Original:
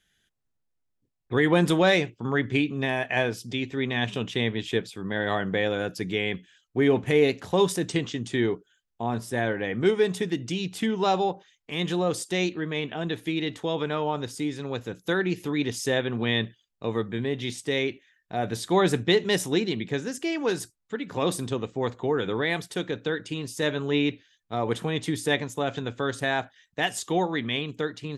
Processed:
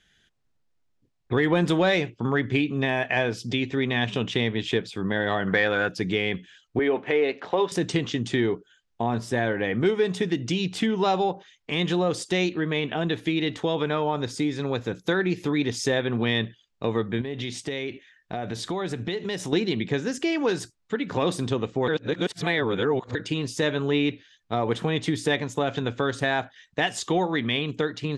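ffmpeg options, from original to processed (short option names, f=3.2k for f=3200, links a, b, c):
-filter_complex "[0:a]asettb=1/sr,asplit=3[a][b][c];[a]atrim=end=5.474[d];[b]atrim=start=5.47:end=5.89,asetpts=PTS-STARTPTS,afade=t=in:d=0.004:c=qsin,afade=t=out:st=0.416:d=0.004:c=qsin,equalizer=f=1.5k:w=0.84:g=10.5[e];[c]atrim=start=5.886[f];[d][e]acrossfade=d=0.004:c1=hsin:c2=qsin[g];[g][f]acrossfade=d=0.004:c1=qsin:c2=hsin,asettb=1/sr,asplit=3[h][i][j];[h]atrim=end=6.794[k];[i]atrim=start=6.79:end=7.72,asetpts=PTS-STARTPTS,afade=t=in:d=0.004:c=qsin,afade=t=out:st=0.926:d=0.004:c=qsin,highpass=380,lowpass=2.9k[l];[j]atrim=start=7.716[m];[k][l]acrossfade=d=0.004:c1=hsin:c2=qsin[n];[n][m]acrossfade=d=0.004:c1=qsin:c2=hsin,asettb=1/sr,asplit=3[o][p][q];[o]atrim=end=13.874[r];[p]atrim=start=13.87:end=16.16,asetpts=PTS-STARTPTS,afade=t=in:d=0.004:c=qsin,afade=t=out:st=2.286:d=0.004:c=qsin,bandreject=f=2.9k:w=14[s];[q]atrim=start=16.156[t];[r][s]acrossfade=d=0.004:c1=hsin:c2=qsin[u];[u][t]acrossfade=d=0.004:c1=qsin:c2=hsin,asettb=1/sr,asplit=3[v][w][x];[v]atrim=end=17.214[y];[w]atrim=start=17.21:end=19.53,asetpts=PTS-STARTPTS,afade=t=in:d=0.004:c=qsin,afade=t=out:st=2.316:d=0.004:c=qsin,acompressor=threshold=-34dB:ratio=5:attack=3.2:release=140:knee=1:detection=peak[z];[x]atrim=start=19.526[aa];[y][z]acrossfade=d=0.004:c1=hsin:c2=qsin[ab];[ab][aa]acrossfade=d=0.004:c1=qsin:c2=hsin,asplit=3[ac][ad][ae];[ac]atrim=end=21.882[af];[ad]atrim=start=21.878:end=23.152,asetpts=PTS-STARTPTS,areverse[ag];[ae]atrim=start=23.148[ah];[af][ag]acrossfade=d=0.004:c1=hsin:c2=hsin[ai];[ai][ah]acrossfade=d=0.004:c1=hsin:c2=hsin,acontrast=45,lowpass=6.2k,acompressor=threshold=-26dB:ratio=2,volume=1.5dB"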